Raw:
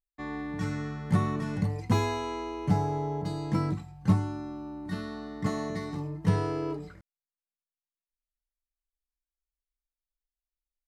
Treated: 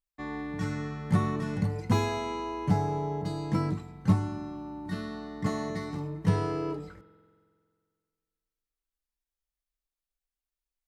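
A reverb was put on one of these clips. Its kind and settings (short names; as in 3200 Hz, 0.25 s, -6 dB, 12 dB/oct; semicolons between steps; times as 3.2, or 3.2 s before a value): spring tank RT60 2 s, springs 45 ms, chirp 60 ms, DRR 13.5 dB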